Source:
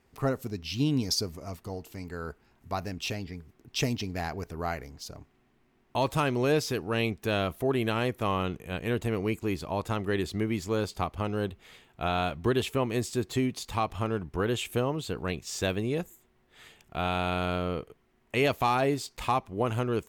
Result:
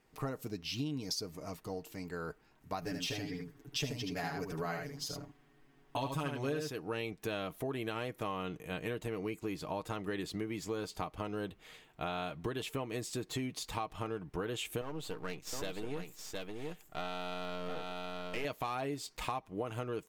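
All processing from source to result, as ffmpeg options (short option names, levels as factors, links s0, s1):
-filter_complex "[0:a]asettb=1/sr,asplit=3[s0][s1][s2];[s0]atrim=end=2.814[s3];[s1]atrim=start=2.81:end=6.7,asetpts=PTS-STARTPTS,afade=t=in:d=0.004:c=qsin,afade=t=out:st=3.886:d=0.004:c=qsin,aecho=1:1:7.1:0.99,atrim=end_sample=171549,aecho=1:1:76:0.531,atrim=end_sample=171549[s4];[s2]atrim=start=6.696[s5];[s3][s4]acrossfade=d=0.004:c1=hsin:c2=qsin[s6];[s6][s5]acrossfade=d=0.004:c1=qsin:c2=hsin,asettb=1/sr,asplit=3[s7][s8][s9];[s7]atrim=end=14.814[s10];[s8]atrim=start=14.81:end=18.45,asetpts=PTS-STARTPTS,afade=t=in:d=0.004:c=qsin,afade=t=out:st=3.636:d=0.004:c=qsin,aeval=exprs='if(lt(val(0),0),0.251*val(0),val(0))':c=same,aecho=1:1:716:0.501,atrim=end_sample=160524[s11];[s9]atrim=start=18.446[s12];[s10][s11]acrossfade=d=0.004:c1=hsin:c2=qsin[s13];[s13][s12]acrossfade=d=0.004:c1=qsin:c2=hsin,equalizer=f=86:w=0.89:g=-5.5,aecho=1:1:6.5:0.39,acompressor=threshold=0.0251:ratio=5,volume=0.75"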